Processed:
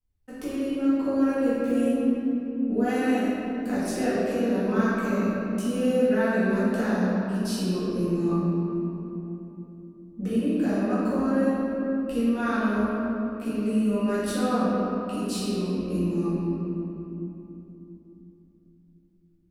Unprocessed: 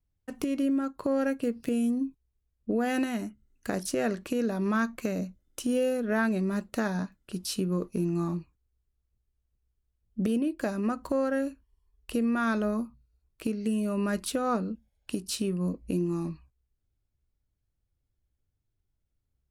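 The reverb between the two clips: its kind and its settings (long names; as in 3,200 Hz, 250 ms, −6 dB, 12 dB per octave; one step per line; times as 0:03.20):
rectangular room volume 170 cubic metres, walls hard, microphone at 2 metres
level −9.5 dB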